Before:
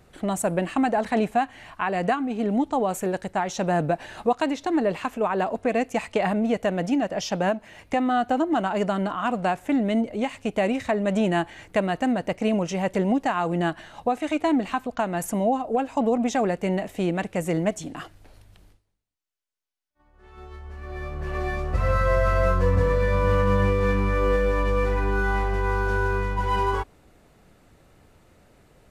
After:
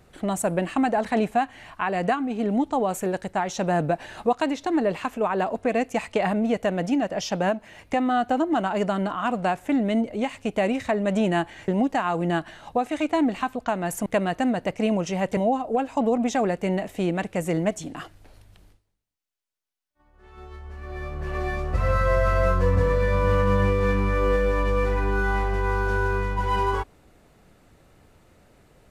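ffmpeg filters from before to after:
-filter_complex "[0:a]asplit=4[s0][s1][s2][s3];[s0]atrim=end=11.682[s4];[s1]atrim=start=12.988:end=15.372[s5];[s2]atrim=start=11.678:end=12.992[s6];[s3]atrim=start=15.368[s7];[s4][s5]acrossfade=d=0.004:c1=hsin:c2=hsin[s8];[s8][s6]acrossfade=d=0.004:c1=hsin:c2=hsin[s9];[s9][s7]acrossfade=d=0.004:c1=hsin:c2=hsin"

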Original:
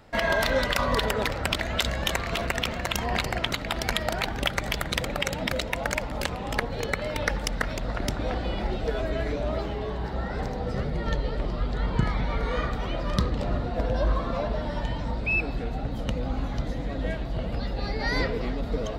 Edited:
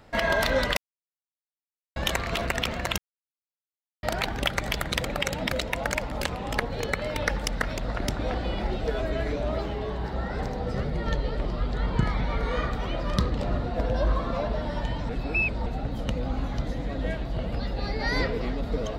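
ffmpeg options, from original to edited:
-filter_complex "[0:a]asplit=7[s0][s1][s2][s3][s4][s5][s6];[s0]atrim=end=0.77,asetpts=PTS-STARTPTS,afade=t=out:st=0.766:d=0.004:c=hsin[s7];[s1]atrim=start=0.77:end=1.96,asetpts=PTS-STARTPTS,volume=0[s8];[s2]atrim=start=1.96:end=2.98,asetpts=PTS-STARTPTS,afade=t=in:d=0.004:c=hsin,afade=t=out:st=1.016:d=0.004:c=hsin[s9];[s3]atrim=start=2.98:end=4.03,asetpts=PTS-STARTPTS,volume=0[s10];[s4]atrim=start=4.03:end=15.092,asetpts=PTS-STARTPTS,afade=t=in:d=0.004:c=hsin[s11];[s5]atrim=start=15.088:end=15.662,asetpts=PTS-STARTPTS,areverse[s12];[s6]atrim=start=15.658[s13];[s7][s8][s9][s10][s11]concat=n=5:v=0:a=1[s14];[s14][s12]acrossfade=d=0.004:c1=hsin:c2=hsin[s15];[s15][s13]acrossfade=d=0.004:c1=hsin:c2=hsin"

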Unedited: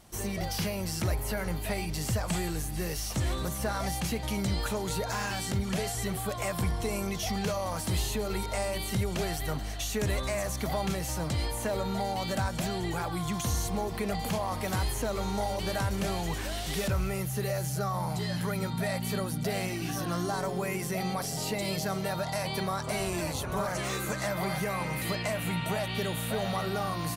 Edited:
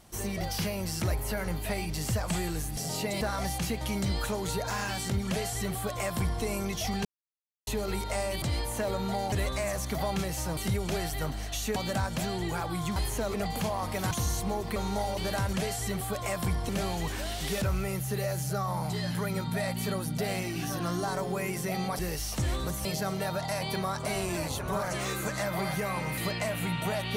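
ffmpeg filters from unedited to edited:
-filter_complex "[0:a]asplit=17[s0][s1][s2][s3][s4][s5][s6][s7][s8][s9][s10][s11][s12][s13][s14][s15][s16];[s0]atrim=end=2.772[s17];[s1]atrim=start=21.248:end=21.692[s18];[s2]atrim=start=3.628:end=7.47,asetpts=PTS-STARTPTS,afade=t=out:st=3.838:d=0.004:c=hsin[s19];[s3]atrim=start=7.47:end=8.09,asetpts=PTS-STARTPTS,volume=0[s20];[s4]atrim=start=8.09:end=8.842,asetpts=PTS-STARTPTS,afade=t=in:d=0.004:c=hsin[s21];[s5]atrim=start=11.278:end=12.182[s22];[s6]atrim=start=10.028:end=11.282[s23];[s7]atrim=start=8.838:end=10.032[s24];[s8]atrim=start=12.178:end=13.382[s25];[s9]atrim=start=14.798:end=15.182[s26];[s10]atrim=start=14.028:end=14.802[s27];[s11]atrim=start=13.378:end=14.032[s28];[s12]atrim=start=15.178:end=15.952[s29];[s13]atrim=start=5.688:end=6.852[s30];[s14]atrim=start=15.948:end=21.252[s31];[s15]atrim=start=2.768:end=3.632[s32];[s16]atrim=start=21.688[s33];[s17][s18]acrossfade=d=0.004:c1=hsin:c2=hsin[s34];[s19][s20][s21]concat=n=3:v=0:a=1[s35];[s34][s35]acrossfade=d=0.004:c1=hsin:c2=hsin[s36];[s36][s22]acrossfade=d=0.004:c1=hsin:c2=hsin[s37];[s37][s23]acrossfade=d=0.004:c1=hsin:c2=hsin[s38];[s38][s24]acrossfade=d=0.004:c1=hsin:c2=hsin[s39];[s39][s25]acrossfade=d=0.004:c1=hsin:c2=hsin[s40];[s40][s26]acrossfade=d=0.004:c1=hsin:c2=hsin[s41];[s41][s27]acrossfade=d=0.004:c1=hsin:c2=hsin[s42];[s42][s28]acrossfade=d=0.004:c1=hsin:c2=hsin[s43];[s43][s29]acrossfade=d=0.004:c1=hsin:c2=hsin[s44];[s44][s30]acrossfade=d=0.004:c1=hsin:c2=hsin[s45];[s45][s31]acrossfade=d=0.004:c1=hsin:c2=hsin[s46];[s46][s32]acrossfade=d=0.004:c1=hsin:c2=hsin[s47];[s47][s33]acrossfade=d=0.004:c1=hsin:c2=hsin"

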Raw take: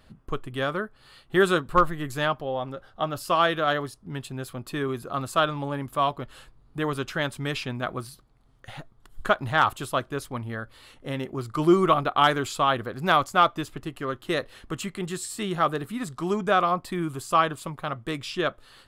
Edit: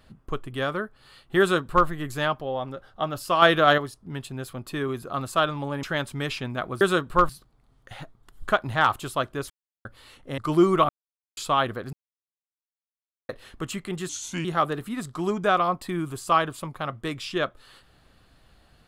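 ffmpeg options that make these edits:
-filter_complex "[0:a]asplit=15[s0][s1][s2][s3][s4][s5][s6][s7][s8][s9][s10][s11][s12][s13][s14];[s0]atrim=end=3.422[s15];[s1]atrim=start=3.418:end=3.782,asetpts=PTS-STARTPTS,volume=2[s16];[s2]atrim=start=3.778:end=5.832[s17];[s3]atrim=start=7.078:end=8.062[s18];[s4]atrim=start=1.398:end=1.882[s19];[s5]atrim=start=8.058:end=10.27,asetpts=PTS-STARTPTS,afade=t=out:st=2.208:d=0.004:c=hsin[s20];[s6]atrim=start=10.27:end=10.62,asetpts=PTS-STARTPTS,volume=0[s21];[s7]atrim=start=10.62:end=11.152,asetpts=PTS-STARTPTS,afade=t=in:d=0.004:c=hsin[s22];[s8]atrim=start=11.478:end=11.99,asetpts=PTS-STARTPTS,afade=t=out:st=0.508:d=0.004:c=hsin[s23];[s9]atrim=start=11.99:end=12.47,asetpts=PTS-STARTPTS,volume=0[s24];[s10]atrim=start=12.47:end=13.03,asetpts=PTS-STARTPTS,afade=t=in:d=0.004:c=hsin,afade=t=out:st=0.556:d=0.004:c=hsin[s25];[s11]atrim=start=13.03:end=14.39,asetpts=PTS-STARTPTS,volume=0[s26];[s12]atrim=start=14.39:end=15.194,asetpts=PTS-STARTPTS,afade=t=in:d=0.004:c=hsin[s27];[s13]atrim=start=15.19:end=15.48,asetpts=PTS-STARTPTS,asetrate=35721,aresample=44100[s28];[s14]atrim=start=15.476[s29];[s15][s16]acrossfade=d=0.004:c1=hsin:c2=hsin[s30];[s30][s17]acrossfade=d=0.004:c1=hsin:c2=hsin[s31];[s31][s18]acrossfade=d=0.004:c1=hsin:c2=hsin[s32];[s32][s19]acrossfade=d=0.004:c1=hsin:c2=hsin[s33];[s20][s21][s22]concat=n=3:v=0:a=1[s34];[s33][s34]acrossfade=d=0.004:c1=hsin:c2=hsin[s35];[s23][s24][s25][s26][s27]concat=n=5:v=0:a=1[s36];[s35][s36]acrossfade=d=0.004:c1=hsin:c2=hsin[s37];[s37][s28]acrossfade=d=0.004:c1=hsin:c2=hsin[s38];[s38][s29]acrossfade=d=0.004:c1=hsin:c2=hsin"

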